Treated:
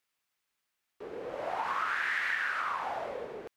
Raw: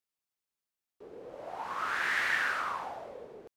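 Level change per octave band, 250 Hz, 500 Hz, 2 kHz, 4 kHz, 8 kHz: +2.0, +5.0, −0.5, −2.5, −5.5 decibels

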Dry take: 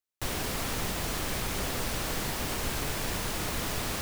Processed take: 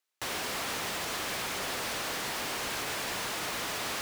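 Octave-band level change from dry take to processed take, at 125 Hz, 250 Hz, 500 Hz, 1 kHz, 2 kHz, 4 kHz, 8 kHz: −12.5, −6.5, −2.0, +0.5, +1.5, +1.0, −1.5 decibels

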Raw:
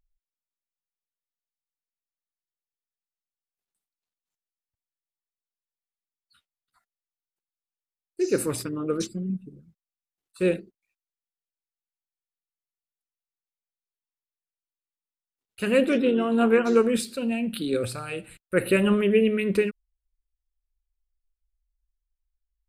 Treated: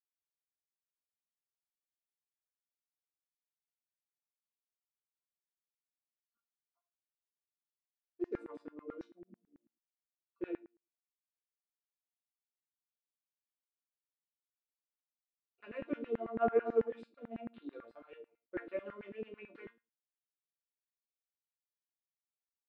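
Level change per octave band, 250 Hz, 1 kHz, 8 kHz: −19.5 dB, −9.5 dB, below −40 dB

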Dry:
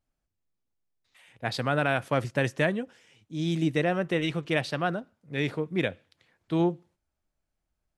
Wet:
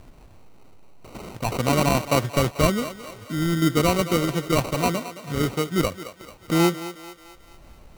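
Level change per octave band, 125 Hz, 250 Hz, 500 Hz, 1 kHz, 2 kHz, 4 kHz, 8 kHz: +6.0, +6.0, +5.0, +7.0, +0.5, +7.0, +17.5 decibels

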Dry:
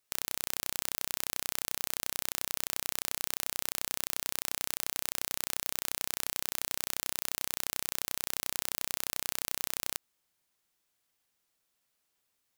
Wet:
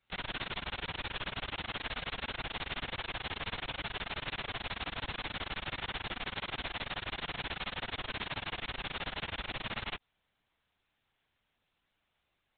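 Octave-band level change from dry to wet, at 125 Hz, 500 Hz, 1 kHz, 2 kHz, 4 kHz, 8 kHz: +8.5 dB, +3.0 dB, +4.0 dB, +4.0 dB, 0.0 dB, below −40 dB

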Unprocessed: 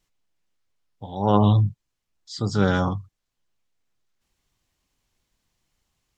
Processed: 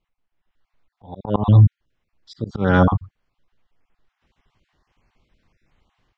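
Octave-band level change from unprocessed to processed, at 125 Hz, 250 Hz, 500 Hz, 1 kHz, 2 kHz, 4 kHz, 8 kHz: +6.0 dB, +2.0 dB, +1.5 dB, +0.5 dB, +5.0 dB, −4.5 dB, can't be measured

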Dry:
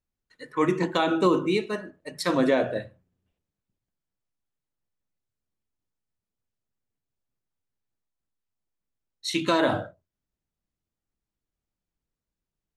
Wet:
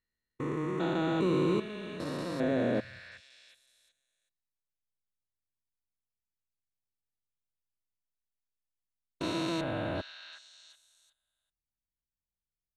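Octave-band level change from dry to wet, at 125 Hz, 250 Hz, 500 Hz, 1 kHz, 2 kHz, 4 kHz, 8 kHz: −1.0, −5.0, −7.0, −9.5, −8.0, −8.0, −10.0 decibels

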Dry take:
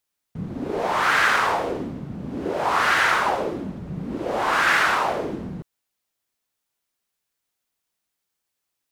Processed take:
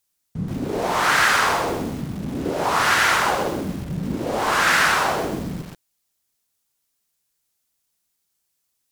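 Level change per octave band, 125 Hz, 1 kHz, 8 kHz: +5.0, +1.0, +8.5 decibels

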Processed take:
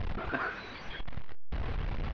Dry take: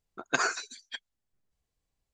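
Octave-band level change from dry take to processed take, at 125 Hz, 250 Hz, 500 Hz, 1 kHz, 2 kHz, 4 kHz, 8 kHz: +18.0, +3.5, −1.0, −3.5, −5.0, −8.0, −29.5 decibels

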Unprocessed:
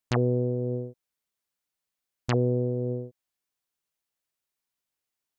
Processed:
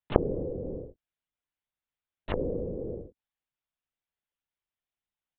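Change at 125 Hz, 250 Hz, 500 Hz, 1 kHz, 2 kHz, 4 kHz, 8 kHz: −10.5 dB, −5.0 dB, −3.0 dB, −1.5 dB, −6.5 dB, −7.0 dB, can't be measured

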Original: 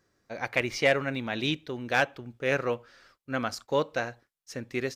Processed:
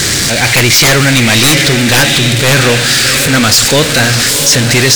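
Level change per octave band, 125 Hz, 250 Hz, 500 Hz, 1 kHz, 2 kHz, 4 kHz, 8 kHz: +27.5, +21.5, +15.0, +17.0, +21.0, +29.5, +37.5 decibels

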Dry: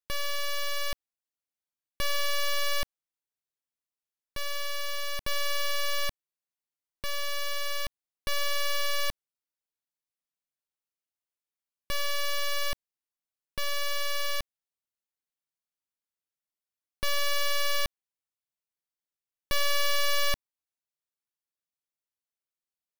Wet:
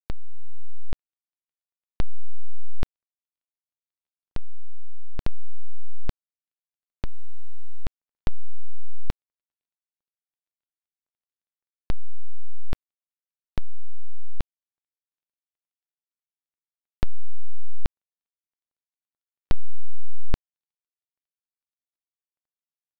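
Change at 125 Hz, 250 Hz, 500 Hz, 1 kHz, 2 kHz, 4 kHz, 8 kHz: +13.5, +13.0, −11.0, −13.0, −18.5, −22.0, −28.0 decibels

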